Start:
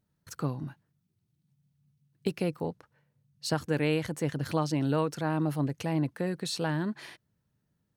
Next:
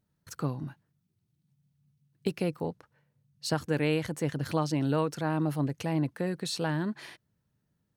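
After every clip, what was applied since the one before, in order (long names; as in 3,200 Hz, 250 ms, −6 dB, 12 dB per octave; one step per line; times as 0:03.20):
no processing that can be heard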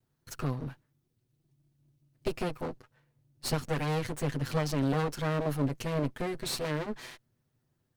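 lower of the sound and its delayed copy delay 7.9 ms
level +2 dB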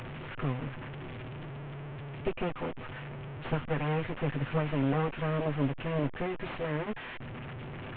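linear delta modulator 16 kbit/s, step −35 dBFS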